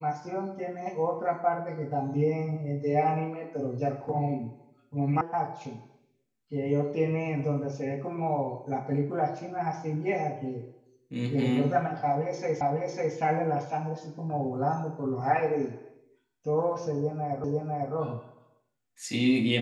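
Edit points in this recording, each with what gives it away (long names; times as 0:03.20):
0:05.21: cut off before it has died away
0:12.61: the same again, the last 0.55 s
0:17.44: the same again, the last 0.5 s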